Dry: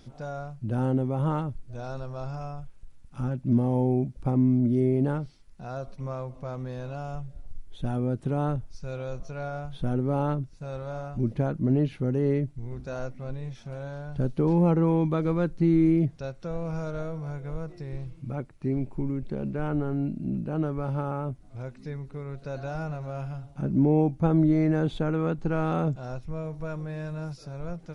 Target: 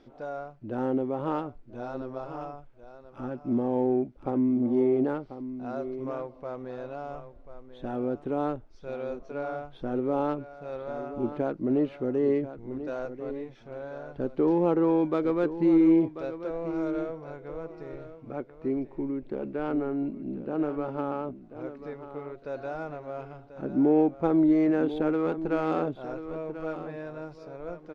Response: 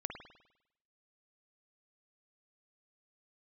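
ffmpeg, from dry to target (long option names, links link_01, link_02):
-af "lowshelf=frequency=220:width_type=q:width=1.5:gain=-11.5,adynamicsmooth=sensitivity=4:basefreq=2800,aecho=1:1:1039:0.251"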